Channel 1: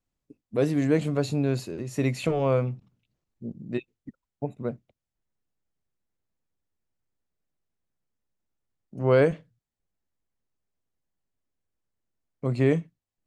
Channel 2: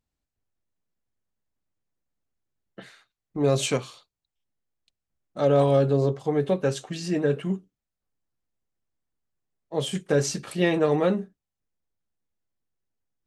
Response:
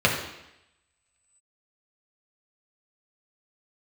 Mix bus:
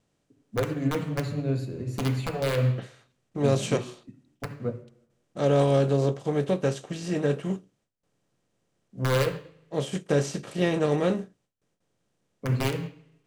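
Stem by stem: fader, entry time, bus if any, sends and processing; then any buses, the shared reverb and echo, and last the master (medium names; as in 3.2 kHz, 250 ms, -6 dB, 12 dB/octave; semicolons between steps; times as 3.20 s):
-5.0 dB, 0.00 s, send -13.5 dB, compression 2:1, threshold -28 dBFS, peak gain reduction 7.5 dB; integer overflow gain 18.5 dB
-4.5 dB, 0.00 s, no send, spectral levelling over time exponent 0.6; gate with hold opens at -51 dBFS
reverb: on, RT60 0.85 s, pre-delay 3 ms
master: bass shelf 180 Hz +6.5 dB; upward expansion 1.5:1, over -43 dBFS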